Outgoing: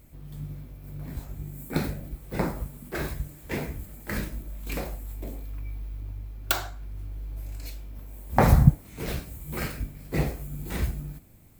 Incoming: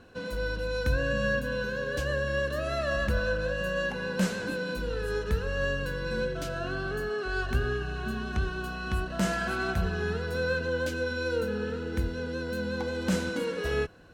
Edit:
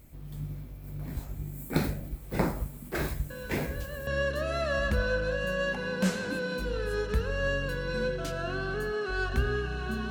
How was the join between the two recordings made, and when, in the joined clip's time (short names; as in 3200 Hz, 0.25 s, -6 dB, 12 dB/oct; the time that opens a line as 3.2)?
outgoing
3.3 add incoming from 1.47 s 0.77 s -10 dB
4.07 switch to incoming from 2.24 s